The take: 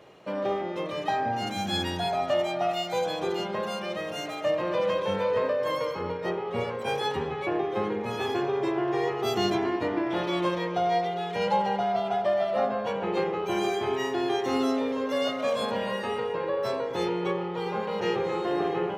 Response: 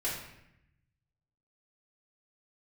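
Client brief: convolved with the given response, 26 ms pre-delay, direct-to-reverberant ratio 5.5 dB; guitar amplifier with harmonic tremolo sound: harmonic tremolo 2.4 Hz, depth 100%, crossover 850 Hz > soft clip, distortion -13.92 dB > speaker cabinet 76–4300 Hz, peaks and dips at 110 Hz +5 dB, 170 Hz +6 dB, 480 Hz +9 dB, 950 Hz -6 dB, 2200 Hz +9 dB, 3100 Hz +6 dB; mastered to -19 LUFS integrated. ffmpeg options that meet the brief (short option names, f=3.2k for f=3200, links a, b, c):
-filter_complex "[0:a]asplit=2[a][b];[1:a]atrim=start_sample=2205,adelay=26[c];[b][c]afir=irnorm=-1:irlink=0,volume=-11dB[d];[a][d]amix=inputs=2:normalize=0,acrossover=split=850[e][f];[e]aeval=exprs='val(0)*(1-1/2+1/2*cos(2*PI*2.4*n/s))':c=same[g];[f]aeval=exprs='val(0)*(1-1/2-1/2*cos(2*PI*2.4*n/s))':c=same[h];[g][h]amix=inputs=2:normalize=0,asoftclip=threshold=-26dB,highpass=76,equalizer=f=110:t=q:w=4:g=5,equalizer=f=170:t=q:w=4:g=6,equalizer=f=480:t=q:w=4:g=9,equalizer=f=950:t=q:w=4:g=-6,equalizer=f=2.2k:t=q:w=4:g=9,equalizer=f=3.1k:t=q:w=4:g=6,lowpass=f=4.3k:w=0.5412,lowpass=f=4.3k:w=1.3066,volume=11dB"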